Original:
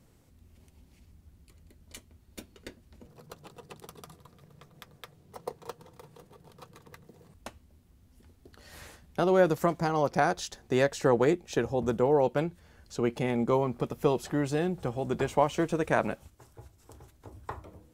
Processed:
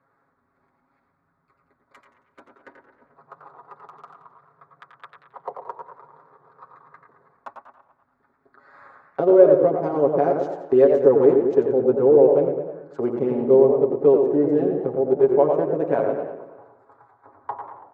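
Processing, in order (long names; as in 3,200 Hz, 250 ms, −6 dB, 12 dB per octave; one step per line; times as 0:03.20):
adaptive Wiener filter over 15 samples
comb filter 7.3 ms, depth 86%
in parallel at −8 dB: asymmetric clip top −21 dBFS
on the sum: envelope filter 420–1,400 Hz, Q 2.6, down, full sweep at −23.5 dBFS
on a send: delay with a low-pass on its return 110 ms, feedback 51%, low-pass 2,500 Hz, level −7 dB
on the sum: feedback echo with a swinging delay time 91 ms, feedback 36%, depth 164 cents, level −8 dB
level +7.5 dB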